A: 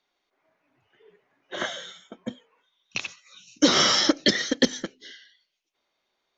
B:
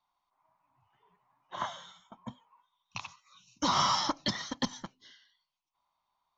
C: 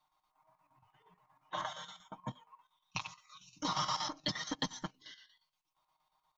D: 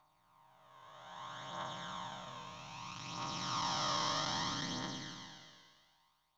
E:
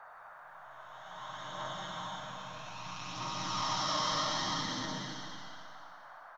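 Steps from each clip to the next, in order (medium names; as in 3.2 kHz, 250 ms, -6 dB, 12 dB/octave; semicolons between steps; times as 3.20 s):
FFT filter 130 Hz 0 dB, 450 Hz -22 dB, 1 kHz +8 dB, 1.6 kHz -14 dB, 4.8 kHz -10 dB, 7.1 kHz -12 dB
comb 6.5 ms, depth 89%; compression 3:1, threshold -36 dBFS, peak gain reduction 11.5 dB; square tremolo 8.5 Hz, depth 60%, duty 70%; trim +1.5 dB
spectral blur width 946 ms; phaser 0.62 Hz, delay 2 ms, feedback 42%; trim +7 dB
feedback delay 348 ms, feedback 47%, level -21 dB; reverberation RT60 1.1 s, pre-delay 15 ms, DRR -0.5 dB; band noise 620–1600 Hz -52 dBFS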